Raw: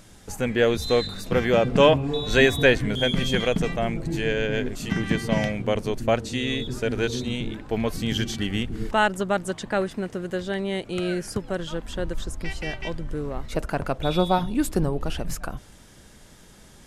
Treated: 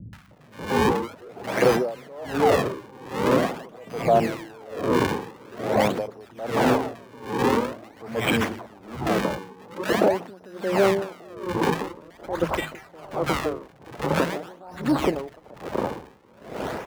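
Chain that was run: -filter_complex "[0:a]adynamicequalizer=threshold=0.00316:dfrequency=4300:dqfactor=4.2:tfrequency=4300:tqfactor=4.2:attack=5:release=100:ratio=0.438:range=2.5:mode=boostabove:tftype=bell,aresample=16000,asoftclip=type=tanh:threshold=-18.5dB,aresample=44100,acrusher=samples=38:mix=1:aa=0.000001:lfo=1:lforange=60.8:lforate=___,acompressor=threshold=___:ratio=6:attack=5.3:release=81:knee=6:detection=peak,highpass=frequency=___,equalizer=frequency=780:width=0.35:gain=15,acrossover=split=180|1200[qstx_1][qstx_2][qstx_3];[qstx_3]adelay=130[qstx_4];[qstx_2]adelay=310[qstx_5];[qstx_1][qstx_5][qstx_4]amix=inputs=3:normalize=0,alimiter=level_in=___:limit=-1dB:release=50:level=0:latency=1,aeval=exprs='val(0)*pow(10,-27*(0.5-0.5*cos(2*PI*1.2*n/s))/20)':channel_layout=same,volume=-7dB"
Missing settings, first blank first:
0.46, -40dB, 82, 22.5dB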